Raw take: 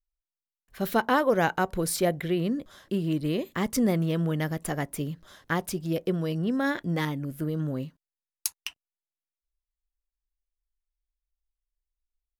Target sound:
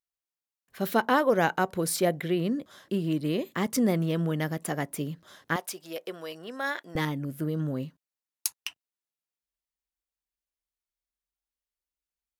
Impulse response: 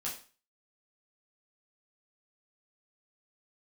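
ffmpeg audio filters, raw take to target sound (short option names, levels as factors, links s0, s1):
-af "asetnsamples=n=441:p=0,asendcmd='5.56 highpass f 640;6.95 highpass f 89',highpass=130"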